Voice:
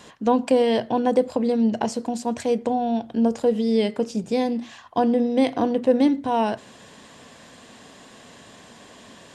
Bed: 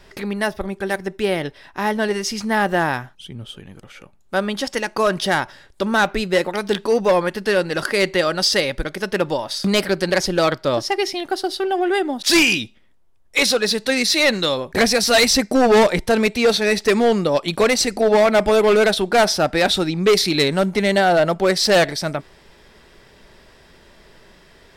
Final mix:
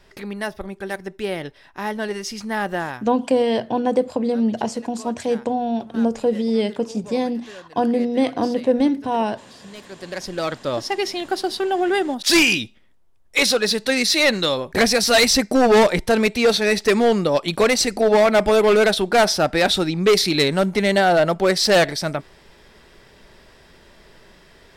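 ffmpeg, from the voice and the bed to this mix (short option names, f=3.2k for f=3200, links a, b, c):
-filter_complex "[0:a]adelay=2800,volume=0.5dB[a];[1:a]volume=16.5dB,afade=t=out:st=2.73:d=0.47:silence=0.141254,afade=t=in:st=9.86:d=1.42:silence=0.0794328[b];[a][b]amix=inputs=2:normalize=0"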